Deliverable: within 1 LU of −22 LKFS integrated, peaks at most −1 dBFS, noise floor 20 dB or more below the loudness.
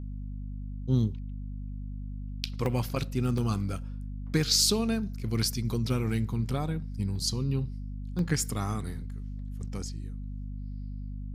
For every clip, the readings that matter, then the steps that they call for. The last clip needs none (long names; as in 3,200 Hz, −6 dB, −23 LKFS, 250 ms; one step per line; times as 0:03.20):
number of dropouts 3; longest dropout 1.5 ms; mains hum 50 Hz; hum harmonics up to 250 Hz; level of the hum −34 dBFS; integrated loudness −31.0 LKFS; sample peak −9.5 dBFS; target loudness −22.0 LKFS
→ repair the gap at 0:02.66/0:03.38/0:08.19, 1.5 ms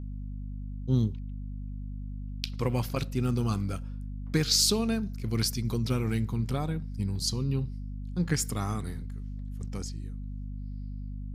number of dropouts 0; mains hum 50 Hz; hum harmonics up to 250 Hz; level of the hum −34 dBFS
→ hum removal 50 Hz, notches 5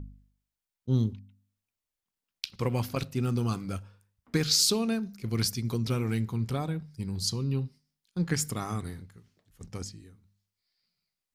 mains hum none found; integrated loudness −30.0 LKFS; sample peak −9.5 dBFS; target loudness −22.0 LKFS
→ level +8 dB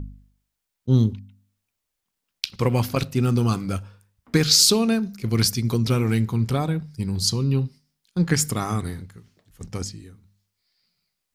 integrated loudness −22.0 LKFS; sample peak −1.5 dBFS; background noise floor −81 dBFS